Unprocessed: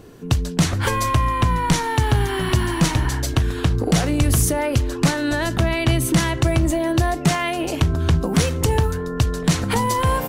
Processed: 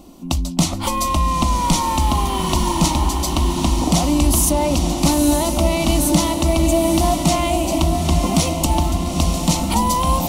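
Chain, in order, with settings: static phaser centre 440 Hz, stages 6; on a send: echo that smears into a reverb 900 ms, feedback 54%, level -5 dB; on the sum: trim +4.5 dB

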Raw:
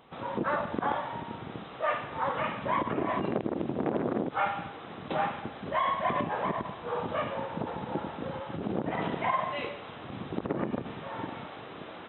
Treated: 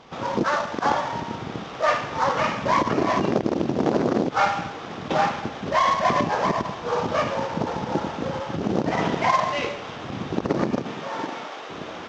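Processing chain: CVSD coder 32 kbps; 0.45–0.85 s: bass shelf 420 Hz -9.5 dB; 10.77–11.68 s: high-pass 120 Hz -> 470 Hz 12 dB/octave; trim +8.5 dB

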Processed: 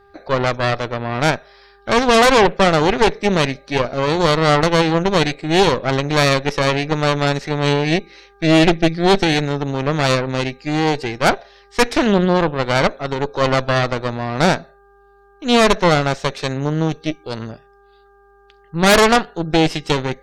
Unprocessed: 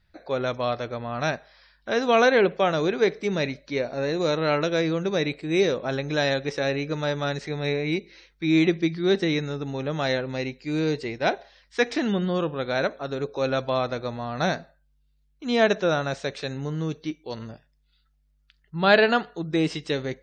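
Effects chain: Chebyshev shaper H 5 -16 dB, 8 -8 dB, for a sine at -5 dBFS; mains buzz 400 Hz, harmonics 4, -53 dBFS; trim +1.5 dB

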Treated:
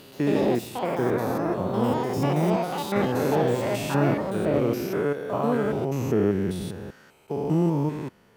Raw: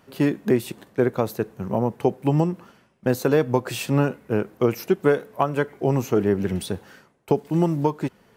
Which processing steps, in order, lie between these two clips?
spectrogram pixelated in time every 200 ms; ever faster or slower copies 130 ms, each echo +6 st, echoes 2

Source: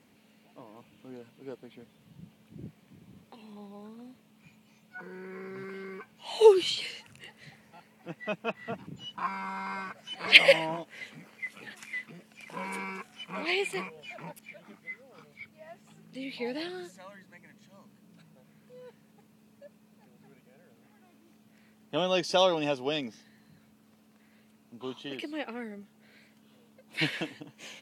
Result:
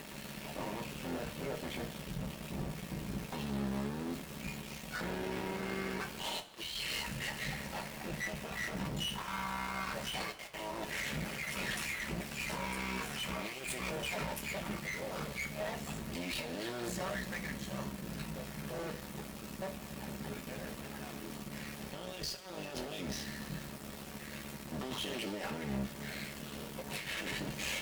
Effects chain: cycle switcher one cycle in 3, muted; compressor with a negative ratio -46 dBFS, ratio -1; small samples zeroed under -52 dBFS; valve stage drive 47 dB, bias 0.35; two-slope reverb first 0.22 s, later 2.2 s, from -20 dB, DRR 2.5 dB; trim +10.5 dB

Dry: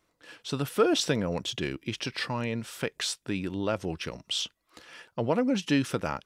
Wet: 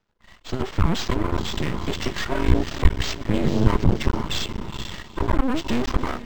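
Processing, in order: every band turned upside down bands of 500 Hz; echo that smears into a reverb 487 ms, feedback 46%, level -14 dB; level rider gain up to 14 dB; saturation -17.5 dBFS, distortion -8 dB; bass shelf 91 Hz +11.5 dB; band-stop 2.4 kHz, Q 8.8; 2.48–5.04 s: bass shelf 220 Hz +8.5 dB; half-wave rectifier; decimation joined by straight lines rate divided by 4×; trim +1 dB

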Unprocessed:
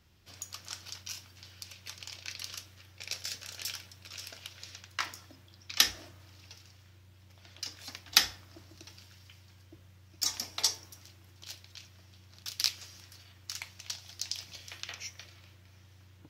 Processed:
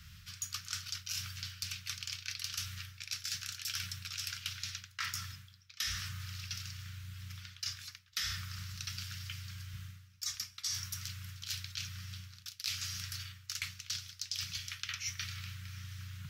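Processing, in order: elliptic band-stop 170–1300 Hz, stop band 40 dB; reverse; compression 12:1, threshold -49 dBFS, peak gain reduction 32.5 dB; reverse; trim +13 dB

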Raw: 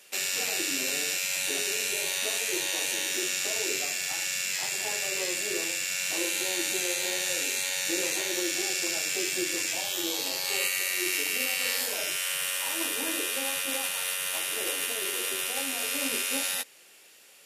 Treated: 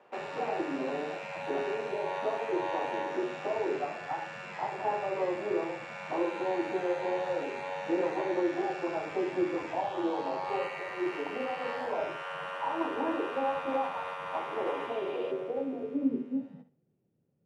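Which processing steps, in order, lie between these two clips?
flutter echo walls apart 11 m, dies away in 0.33 s; low-pass sweep 920 Hz -> 150 Hz, 14.82–16.85 s; spectral replace 14.75–15.29 s, 2.3–5 kHz before; trim +3 dB

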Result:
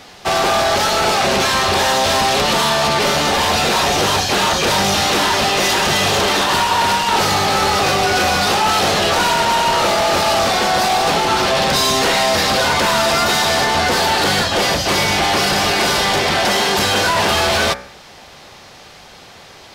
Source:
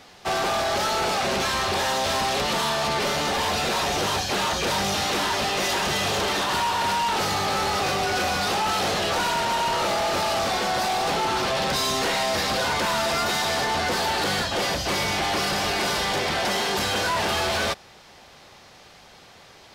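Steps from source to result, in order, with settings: de-hum 62.77 Hz, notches 38; trim +9 dB

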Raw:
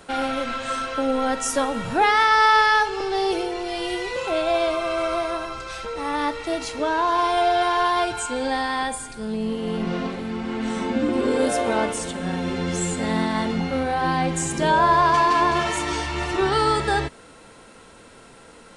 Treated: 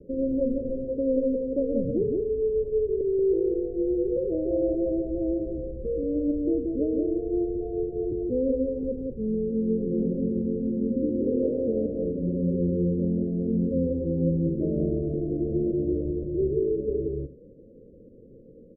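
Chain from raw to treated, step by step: steep low-pass 550 Hz 96 dB/octave; 0.45–1.83 s: dynamic bell 420 Hz, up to +7 dB, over -46 dBFS, Q 5.2; gain riding within 4 dB 0.5 s; multi-tap echo 181/267 ms -3/-19 dB

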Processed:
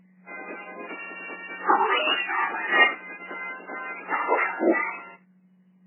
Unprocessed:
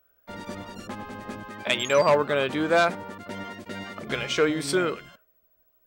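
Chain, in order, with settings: spectrum inverted on a logarithmic axis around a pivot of 1.7 kHz; trim +7.5 dB; MP3 8 kbps 8 kHz

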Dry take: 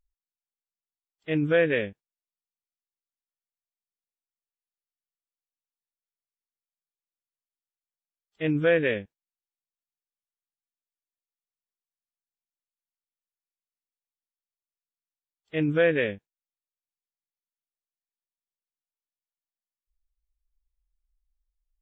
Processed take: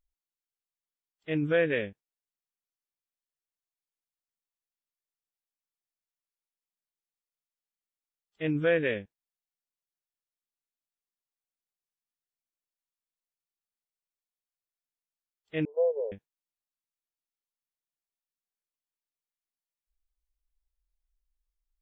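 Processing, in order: 15.65–16.12 s: Chebyshev band-pass 420–1000 Hz, order 5; trim -3.5 dB

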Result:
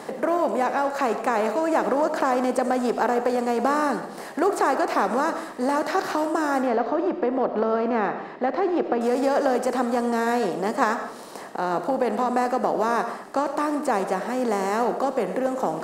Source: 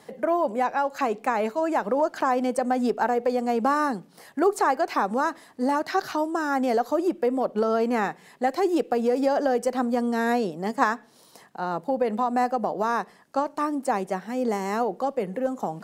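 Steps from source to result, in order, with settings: spectral levelling over time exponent 0.6; 6.62–9.01 s: distance through air 250 m; reverberation, pre-delay 50 ms, DRR 8.5 dB; trim -2.5 dB

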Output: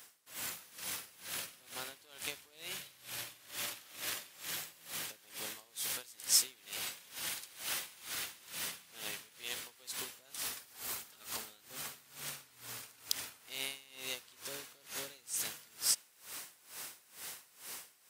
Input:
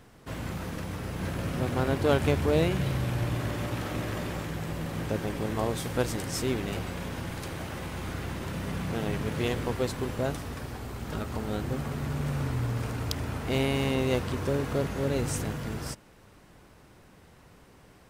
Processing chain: level rider; dynamic bell 3.7 kHz, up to +4 dB, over -37 dBFS, Q 0.88; compression 12:1, threshold -32 dBFS, peak gain reduction 23 dB; differentiator; logarithmic tremolo 2.2 Hz, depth 22 dB; trim +12 dB

